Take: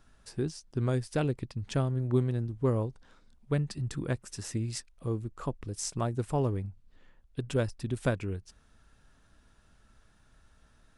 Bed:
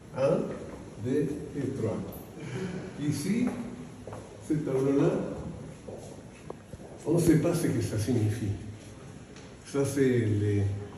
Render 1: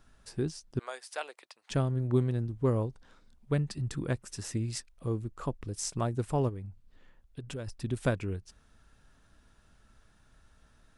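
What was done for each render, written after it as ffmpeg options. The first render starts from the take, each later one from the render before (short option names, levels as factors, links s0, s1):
-filter_complex "[0:a]asettb=1/sr,asplit=3[s0][s1][s2];[s0]atrim=end=0.794[s3];[s1]atrim=start=0.79:end=1.7,asetpts=PTS-STARTPTS,afade=t=in:d=0.004:c=qsin,afade=t=out:st=0.906:d=0.004:c=qsin,highpass=f=670:w=0.5412,highpass=f=670:w=1.3066[s4];[s2]atrim=start=1.696[s5];[s3][s4]acrossfade=d=0.004:c1=hsin:c2=qsin[s6];[s6][s5]acrossfade=d=0.004:c1=qsin:c2=hsin,asplit=3[s7][s8][s9];[s7]afade=t=out:st=6.48:d=0.02[s10];[s8]acompressor=threshold=0.0126:ratio=3:attack=3.2:release=140:knee=1:detection=peak,afade=t=in:st=6.48:d=0.02,afade=t=out:st=7.66:d=0.02[s11];[s9]afade=t=in:st=7.66:d=0.02[s12];[s10][s11][s12]amix=inputs=3:normalize=0"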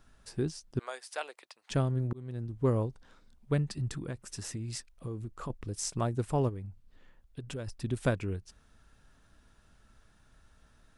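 -filter_complex "[0:a]asettb=1/sr,asplit=3[s0][s1][s2];[s0]atrim=end=3.974[s3];[s1]atrim=start=3.97:end=5.5,asetpts=PTS-STARTPTS,afade=t=in:d=0.004:c=qsin,afade=t=out:st=1.526:d=0.004:c=qsin,acompressor=threshold=0.02:ratio=4:attack=3.2:release=140:knee=1:detection=peak[s4];[s2]atrim=start=5.496[s5];[s3][s4]acrossfade=d=0.004:c1=hsin:c2=qsin[s6];[s6][s5]acrossfade=d=0.004:c1=qsin:c2=hsin,asplit=2[s7][s8];[s7]atrim=end=2.13,asetpts=PTS-STARTPTS,afade=t=out:st=2.126:d=0.004:c=hsin[s9];[s8]atrim=start=2.13,asetpts=PTS-STARTPTS,afade=t=in:d=0.51[s10];[s9][s10]concat=n=2:v=0:a=1"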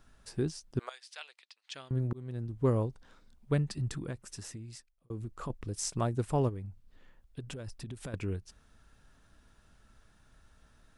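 -filter_complex "[0:a]asettb=1/sr,asplit=3[s0][s1][s2];[s0]atrim=end=0.894[s3];[s1]atrim=start=0.89:end=1.91,asetpts=PTS-STARTPTS,afade=t=in:d=0.004:c=qsin,afade=t=out:st=1.016:d=0.004:c=qsin,bandpass=f=3600:t=q:w=1.2[s4];[s2]atrim=start=1.906[s5];[s3][s4]acrossfade=d=0.004:c1=hsin:c2=qsin[s6];[s6][s5]acrossfade=d=0.004:c1=qsin:c2=hsin,asettb=1/sr,asplit=3[s7][s8][s9];[s7]atrim=end=7.494[s10];[s8]atrim=start=7.49:end=8.14,asetpts=PTS-STARTPTS,afade=t=in:d=0.004:c=qsin,afade=t=out:st=0.646:d=0.004:c=qsin,acompressor=threshold=0.0141:ratio=12:attack=3.2:release=140:knee=1:detection=peak[s11];[s9]atrim=start=8.136[s12];[s10][s11]acrossfade=d=0.004:c1=hsin:c2=qsin[s13];[s13][s12]acrossfade=d=0.004:c1=qsin:c2=hsin,asplit=2[s14][s15];[s14]atrim=end=5.1,asetpts=PTS-STARTPTS,afade=t=out:st=4.05:d=1.05[s16];[s15]atrim=start=5.1,asetpts=PTS-STARTPTS,afade=t=in:d=0.004:c=hsin[s17];[s16][s17]concat=n=2:v=0:a=1"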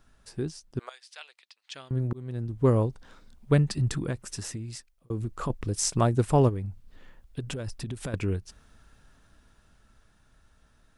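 -af "dynaudnorm=f=230:g=21:m=2.51"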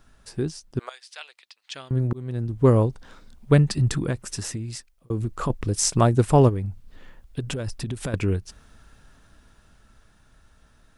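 -af "volume=1.78"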